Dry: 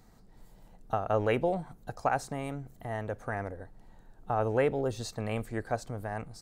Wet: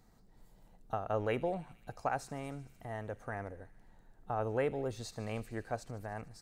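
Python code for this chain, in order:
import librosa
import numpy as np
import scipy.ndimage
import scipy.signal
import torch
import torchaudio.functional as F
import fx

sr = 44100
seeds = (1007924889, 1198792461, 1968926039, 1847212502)

y = fx.echo_wet_highpass(x, sr, ms=75, feedback_pct=80, hz=2600.0, wet_db=-16.0)
y = y * 10.0 ** (-6.0 / 20.0)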